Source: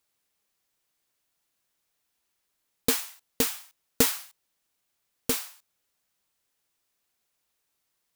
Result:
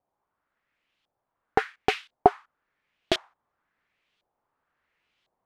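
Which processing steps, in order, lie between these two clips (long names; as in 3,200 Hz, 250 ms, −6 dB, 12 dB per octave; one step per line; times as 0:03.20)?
gliding playback speed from 197% → 102%
auto-filter low-pass saw up 0.95 Hz 710–3,400 Hz
level +5.5 dB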